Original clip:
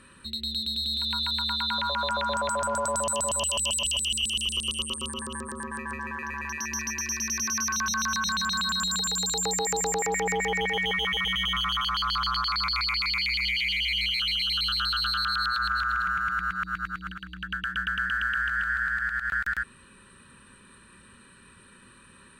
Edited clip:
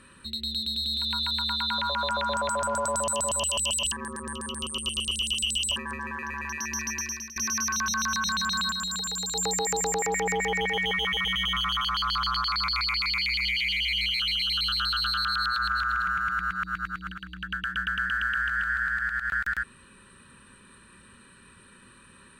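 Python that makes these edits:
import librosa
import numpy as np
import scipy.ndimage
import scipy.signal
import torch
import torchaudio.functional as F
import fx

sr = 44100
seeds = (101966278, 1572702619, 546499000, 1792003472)

y = fx.edit(x, sr, fx.reverse_span(start_s=3.92, length_s=1.84),
    fx.fade_out_to(start_s=6.99, length_s=0.37, floor_db=-20.5),
    fx.clip_gain(start_s=8.71, length_s=0.64, db=-3.5), tone=tone)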